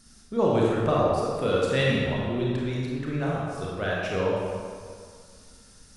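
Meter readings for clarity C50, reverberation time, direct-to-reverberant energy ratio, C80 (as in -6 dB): -2.5 dB, 2.0 s, -5.0 dB, 0.0 dB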